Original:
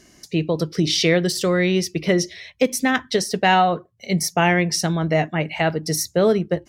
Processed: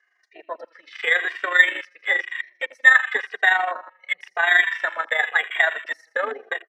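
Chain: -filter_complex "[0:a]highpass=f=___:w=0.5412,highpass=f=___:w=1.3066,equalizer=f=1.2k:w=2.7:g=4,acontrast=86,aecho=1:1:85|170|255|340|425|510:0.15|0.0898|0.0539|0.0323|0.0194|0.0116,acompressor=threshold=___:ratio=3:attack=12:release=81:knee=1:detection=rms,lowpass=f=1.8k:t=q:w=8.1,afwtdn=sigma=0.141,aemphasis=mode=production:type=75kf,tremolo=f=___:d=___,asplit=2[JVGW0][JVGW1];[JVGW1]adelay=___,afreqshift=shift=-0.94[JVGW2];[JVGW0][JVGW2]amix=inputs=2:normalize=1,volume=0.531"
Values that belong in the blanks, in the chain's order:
570, 570, 0.178, 25, 0.571, 2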